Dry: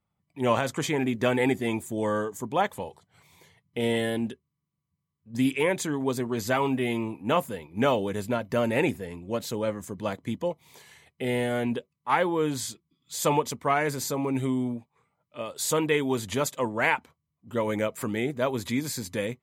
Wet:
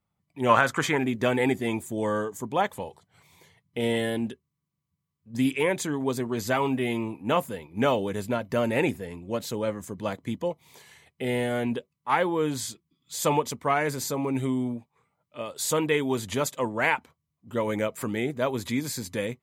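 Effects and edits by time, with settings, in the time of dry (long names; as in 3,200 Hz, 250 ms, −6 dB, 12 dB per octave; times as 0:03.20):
0:00.49–0:00.98: parametric band 1,400 Hz +12 dB 1.1 octaves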